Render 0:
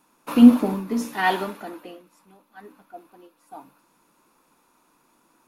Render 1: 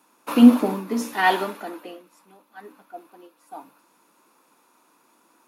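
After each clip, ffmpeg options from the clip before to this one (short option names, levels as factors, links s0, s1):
-af "highpass=240,volume=1.33"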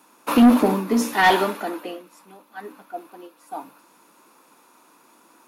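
-af "asoftclip=type=tanh:threshold=0.188,volume=2"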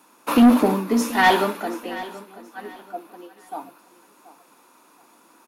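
-af "aecho=1:1:729|1458|2187:0.141|0.0396|0.0111"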